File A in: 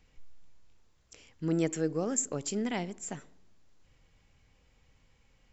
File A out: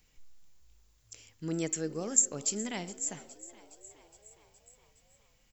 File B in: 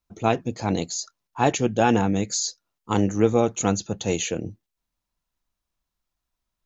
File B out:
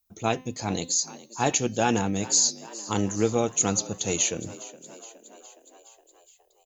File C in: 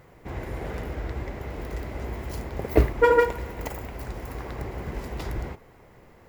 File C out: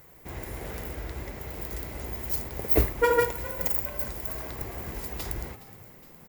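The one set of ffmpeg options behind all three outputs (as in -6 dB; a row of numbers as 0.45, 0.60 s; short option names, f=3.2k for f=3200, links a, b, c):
-filter_complex "[0:a]aemphasis=mode=production:type=75fm,bandreject=f=256.8:t=h:w=4,bandreject=f=513.6:t=h:w=4,bandreject=f=770.4:t=h:w=4,bandreject=f=1.0272k:t=h:w=4,bandreject=f=1.284k:t=h:w=4,bandreject=f=1.5408k:t=h:w=4,bandreject=f=1.7976k:t=h:w=4,bandreject=f=2.0544k:t=h:w=4,bandreject=f=2.3112k:t=h:w=4,bandreject=f=2.568k:t=h:w=4,bandreject=f=2.8248k:t=h:w=4,bandreject=f=3.0816k:t=h:w=4,bandreject=f=3.3384k:t=h:w=4,bandreject=f=3.5952k:t=h:w=4,bandreject=f=3.852k:t=h:w=4,bandreject=f=4.1088k:t=h:w=4,bandreject=f=4.3656k:t=h:w=4,bandreject=f=4.6224k:t=h:w=4,bandreject=f=4.8792k:t=h:w=4,bandreject=f=5.136k:t=h:w=4,bandreject=f=5.3928k:t=h:w=4,bandreject=f=5.6496k:t=h:w=4,bandreject=f=5.9064k:t=h:w=4,bandreject=f=6.1632k:t=h:w=4,bandreject=f=6.42k:t=h:w=4,asplit=2[a][b];[b]asplit=6[c][d][e][f][g][h];[c]adelay=416,afreqshift=53,volume=-18dB[i];[d]adelay=832,afreqshift=106,volume=-21.9dB[j];[e]adelay=1248,afreqshift=159,volume=-25.8dB[k];[f]adelay=1664,afreqshift=212,volume=-29.6dB[l];[g]adelay=2080,afreqshift=265,volume=-33.5dB[m];[h]adelay=2496,afreqshift=318,volume=-37.4dB[n];[i][j][k][l][m][n]amix=inputs=6:normalize=0[o];[a][o]amix=inputs=2:normalize=0,volume=-4dB"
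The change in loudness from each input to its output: +1.5, -1.5, -0.5 LU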